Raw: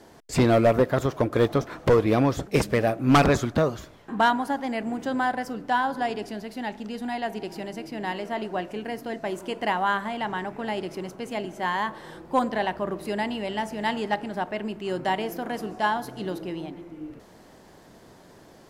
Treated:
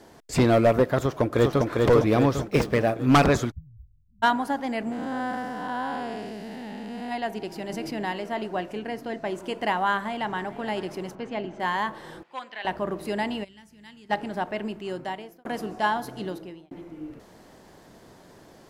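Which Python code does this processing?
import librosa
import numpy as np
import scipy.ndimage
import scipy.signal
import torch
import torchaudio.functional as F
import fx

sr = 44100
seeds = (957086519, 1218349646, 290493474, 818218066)

y = fx.echo_throw(x, sr, start_s=0.98, length_s=0.69, ms=400, feedback_pct=55, wet_db=-2.5)
y = fx.median_filter(y, sr, points=5, at=(2.41, 2.95))
y = fx.cheby2_bandstop(y, sr, low_hz=490.0, high_hz=8200.0, order=4, stop_db=80, at=(3.5, 4.22), fade=0.02)
y = fx.spec_blur(y, sr, span_ms=317.0, at=(4.91, 7.1), fade=0.02)
y = fx.env_flatten(y, sr, amount_pct=50, at=(7.69, 8.09))
y = fx.high_shelf(y, sr, hz=9400.0, db=-9.5, at=(8.79, 9.44))
y = fx.echo_throw(y, sr, start_s=9.96, length_s=0.63, ms=430, feedback_pct=45, wet_db=-16.5)
y = fx.air_absorb(y, sr, metres=160.0, at=(11.15, 11.6))
y = fx.bandpass_q(y, sr, hz=2600.0, q=1.6, at=(12.23, 12.65))
y = fx.tone_stack(y, sr, knobs='6-0-2', at=(13.43, 14.09), fade=0.02)
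y = fx.edit(y, sr, fx.fade_out_span(start_s=14.64, length_s=0.81),
    fx.fade_out_span(start_s=16.19, length_s=0.52), tone=tone)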